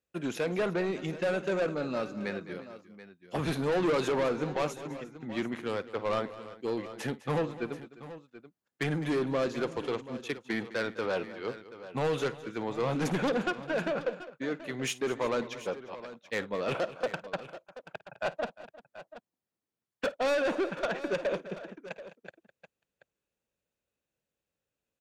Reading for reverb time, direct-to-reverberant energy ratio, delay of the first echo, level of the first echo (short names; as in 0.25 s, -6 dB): none, none, 53 ms, -19.5 dB